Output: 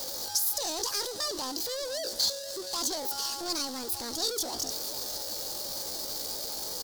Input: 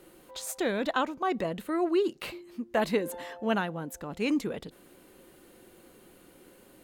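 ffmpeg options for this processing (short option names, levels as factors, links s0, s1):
-filter_complex "[0:a]aeval=exprs='val(0)+0.5*0.0266*sgn(val(0))':c=same,asetrate=70004,aresample=44100,atempo=0.629961,asoftclip=type=hard:threshold=0.0376,highshelf=f=3400:t=q:w=3:g=11,asplit=2[s0][s1];[s1]aecho=0:1:474:0.158[s2];[s0][s2]amix=inputs=2:normalize=0,volume=0.501"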